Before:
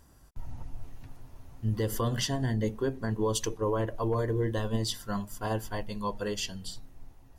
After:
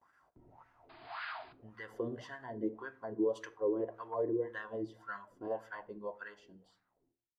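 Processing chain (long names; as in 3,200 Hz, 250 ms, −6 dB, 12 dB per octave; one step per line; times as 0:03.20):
fade-out on the ending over 1.80 s
noise gate with hold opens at −50 dBFS
parametric band 2,100 Hz +4.5 dB 0.28 octaves
in parallel at −2.5 dB: downward compressor, threshold −44 dBFS, peak gain reduction 18 dB
on the sum: sound drawn into the spectrogram noise, 0:00.89–0:01.53, 620–5,000 Hz −33 dBFS
LFO wah 1.8 Hz 320–1,600 Hz, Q 4.7
on a send at −14.5 dB: convolution reverb RT60 0.45 s, pre-delay 3 ms
on the sum: level +1.5 dB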